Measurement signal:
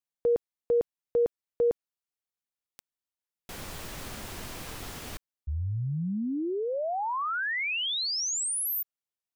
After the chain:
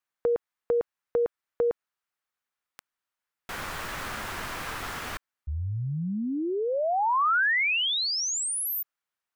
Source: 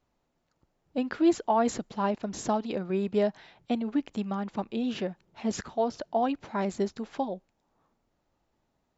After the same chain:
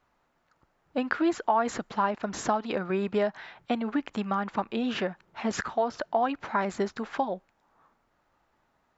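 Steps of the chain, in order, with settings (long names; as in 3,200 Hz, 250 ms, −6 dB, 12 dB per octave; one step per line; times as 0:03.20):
parametric band 1,400 Hz +12.5 dB 1.9 octaves
downward compressor 2.5 to 1, threshold −24 dBFS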